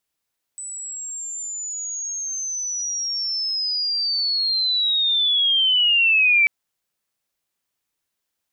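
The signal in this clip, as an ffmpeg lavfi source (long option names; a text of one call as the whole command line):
ffmpeg -f lavfi -i "aevalsrc='pow(10,(-30+17.5*t/5.89)/20)*sin(2*PI*(8000*t-5700*t*t/(2*5.89)))':duration=5.89:sample_rate=44100" out.wav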